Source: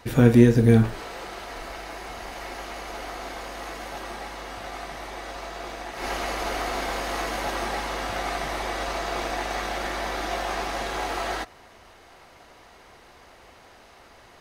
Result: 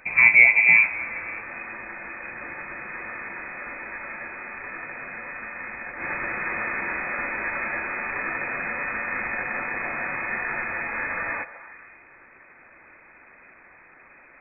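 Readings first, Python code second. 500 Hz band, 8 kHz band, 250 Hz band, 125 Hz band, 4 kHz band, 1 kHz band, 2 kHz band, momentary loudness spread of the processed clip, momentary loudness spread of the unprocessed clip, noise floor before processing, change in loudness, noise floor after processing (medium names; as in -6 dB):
-11.0 dB, under -40 dB, -17.0 dB, -22.0 dB, under -35 dB, -3.5 dB, +12.5 dB, 20 LU, 18 LU, -51 dBFS, +4.0 dB, -52 dBFS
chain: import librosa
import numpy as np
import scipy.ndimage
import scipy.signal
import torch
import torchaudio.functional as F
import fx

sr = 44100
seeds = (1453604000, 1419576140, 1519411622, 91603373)

y = fx.freq_invert(x, sr, carrier_hz=2500)
y = fx.echo_stepped(y, sr, ms=145, hz=590.0, octaves=0.7, feedback_pct=70, wet_db=-11.0)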